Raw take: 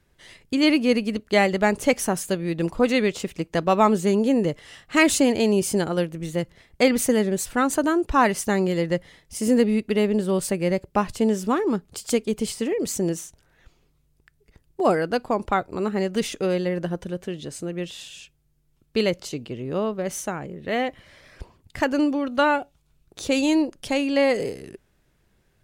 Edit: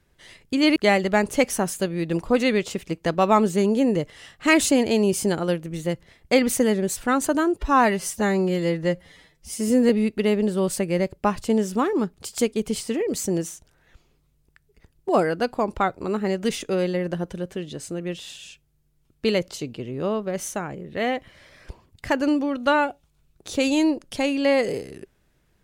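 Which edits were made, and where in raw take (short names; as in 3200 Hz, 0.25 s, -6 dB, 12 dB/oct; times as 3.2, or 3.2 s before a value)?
0.76–1.25 cut
8.06–9.61 stretch 1.5×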